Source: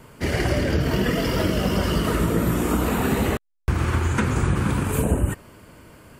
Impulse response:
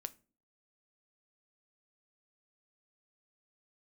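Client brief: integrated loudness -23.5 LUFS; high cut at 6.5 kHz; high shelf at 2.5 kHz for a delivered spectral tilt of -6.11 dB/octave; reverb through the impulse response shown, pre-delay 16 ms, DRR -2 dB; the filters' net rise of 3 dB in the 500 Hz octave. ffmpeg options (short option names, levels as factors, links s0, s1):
-filter_complex "[0:a]lowpass=6500,equalizer=f=500:t=o:g=4,highshelf=f=2500:g=-6,asplit=2[s0][s1];[1:a]atrim=start_sample=2205,adelay=16[s2];[s1][s2]afir=irnorm=-1:irlink=0,volume=1.78[s3];[s0][s3]amix=inputs=2:normalize=0,volume=0.531"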